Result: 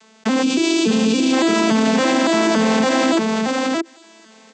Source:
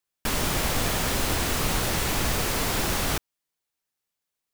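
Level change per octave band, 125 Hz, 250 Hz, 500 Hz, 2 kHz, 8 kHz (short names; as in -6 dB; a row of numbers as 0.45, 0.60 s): -1.5, +18.0, +13.5, +7.5, +1.0 dB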